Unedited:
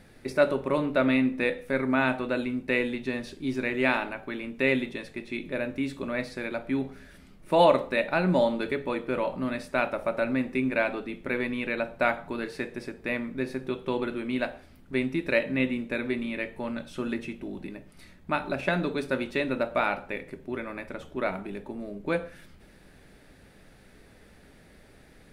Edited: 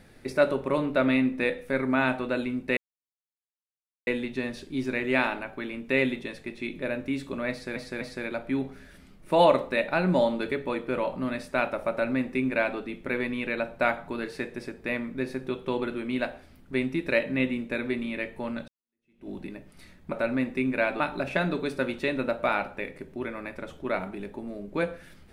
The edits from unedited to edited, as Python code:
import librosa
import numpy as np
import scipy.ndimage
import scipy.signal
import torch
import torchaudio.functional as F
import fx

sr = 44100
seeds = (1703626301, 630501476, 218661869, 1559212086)

y = fx.edit(x, sr, fx.insert_silence(at_s=2.77, length_s=1.3),
    fx.repeat(start_s=6.21, length_s=0.25, count=3),
    fx.duplicate(start_s=10.1, length_s=0.88, to_s=18.32),
    fx.fade_in_span(start_s=16.88, length_s=0.61, curve='exp'), tone=tone)